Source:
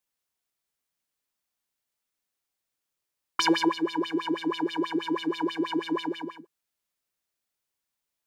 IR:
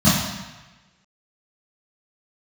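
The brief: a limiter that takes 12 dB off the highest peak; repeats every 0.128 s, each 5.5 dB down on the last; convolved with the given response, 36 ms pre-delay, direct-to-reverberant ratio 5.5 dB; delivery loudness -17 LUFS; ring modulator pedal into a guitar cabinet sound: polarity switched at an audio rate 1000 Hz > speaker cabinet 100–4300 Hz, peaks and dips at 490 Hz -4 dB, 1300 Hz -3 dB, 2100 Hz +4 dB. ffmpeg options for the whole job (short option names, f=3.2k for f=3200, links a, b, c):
-filter_complex "[0:a]alimiter=limit=-23dB:level=0:latency=1,aecho=1:1:128|256|384|512|640|768|896:0.531|0.281|0.149|0.079|0.0419|0.0222|0.0118,asplit=2[a][b];[1:a]atrim=start_sample=2205,adelay=36[c];[b][c]afir=irnorm=-1:irlink=0,volume=-26.5dB[d];[a][d]amix=inputs=2:normalize=0,aeval=exprs='val(0)*sgn(sin(2*PI*1000*n/s))':c=same,highpass=100,equalizer=f=490:t=q:w=4:g=-4,equalizer=f=1.3k:t=q:w=4:g=-3,equalizer=f=2.1k:t=q:w=4:g=4,lowpass=f=4.3k:w=0.5412,lowpass=f=4.3k:w=1.3066,volume=12.5dB"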